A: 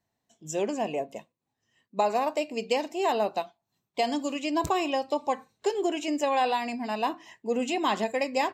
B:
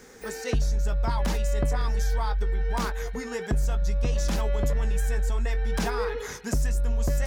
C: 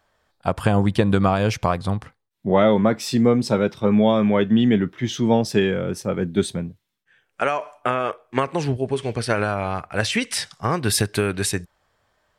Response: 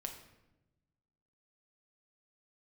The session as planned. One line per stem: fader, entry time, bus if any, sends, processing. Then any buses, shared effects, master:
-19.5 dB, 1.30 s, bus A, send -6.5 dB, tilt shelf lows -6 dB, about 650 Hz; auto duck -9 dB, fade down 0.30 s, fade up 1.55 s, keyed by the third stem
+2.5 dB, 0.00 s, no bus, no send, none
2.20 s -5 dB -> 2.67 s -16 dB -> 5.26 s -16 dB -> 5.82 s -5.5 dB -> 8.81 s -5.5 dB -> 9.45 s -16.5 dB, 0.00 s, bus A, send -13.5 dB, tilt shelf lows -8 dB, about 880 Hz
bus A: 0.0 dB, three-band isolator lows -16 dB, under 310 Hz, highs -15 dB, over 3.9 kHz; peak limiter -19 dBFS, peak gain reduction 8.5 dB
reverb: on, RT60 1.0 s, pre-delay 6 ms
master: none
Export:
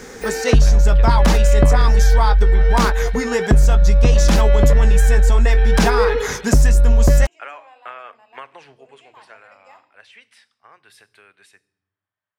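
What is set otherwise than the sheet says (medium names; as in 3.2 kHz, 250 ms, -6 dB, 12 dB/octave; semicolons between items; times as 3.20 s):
stem B +2.5 dB -> +13.0 dB; stem C -5.0 dB -> -14.0 dB; master: extra treble shelf 10 kHz -6.5 dB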